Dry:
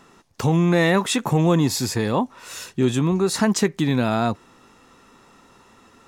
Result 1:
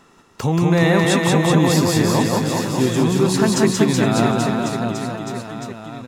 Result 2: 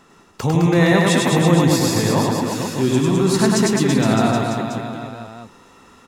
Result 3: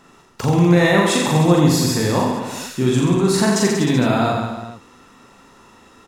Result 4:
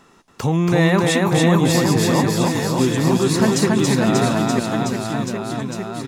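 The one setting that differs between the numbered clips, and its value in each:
reverse bouncing-ball echo, first gap: 180, 100, 40, 280 ms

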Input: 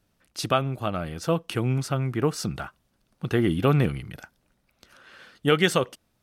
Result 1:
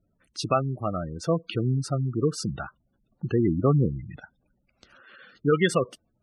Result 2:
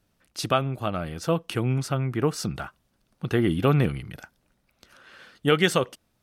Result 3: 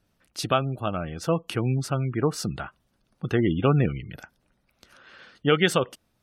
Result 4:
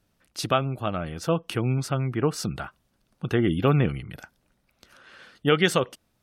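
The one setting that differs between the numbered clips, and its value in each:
spectral gate, under each frame's peak: -15, -60, -30, -40 dB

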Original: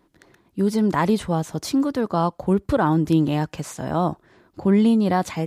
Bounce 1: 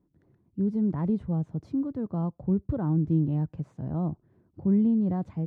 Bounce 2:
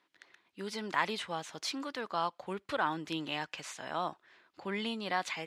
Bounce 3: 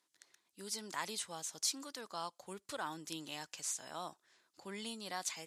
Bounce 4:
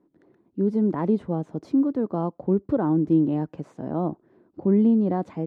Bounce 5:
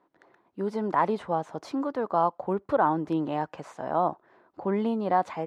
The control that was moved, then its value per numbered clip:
band-pass, frequency: 110, 2700, 7300, 300, 830 Hz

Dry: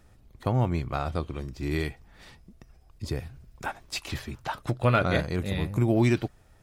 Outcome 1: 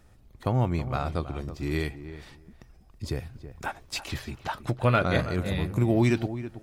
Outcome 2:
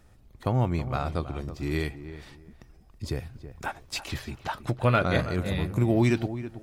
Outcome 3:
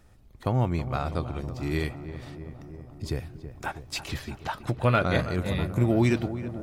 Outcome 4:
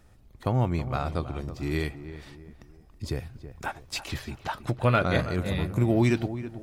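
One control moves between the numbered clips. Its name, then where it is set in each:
darkening echo, feedback: 15, 23, 77, 41%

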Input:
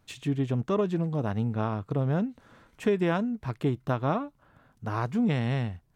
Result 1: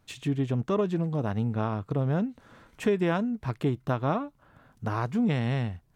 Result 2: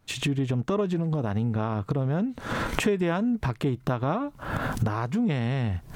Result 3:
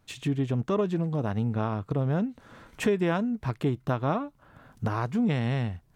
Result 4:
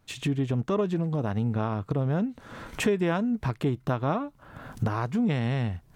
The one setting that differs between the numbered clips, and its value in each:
recorder AGC, rising by: 5.8, 88, 15, 36 dB/s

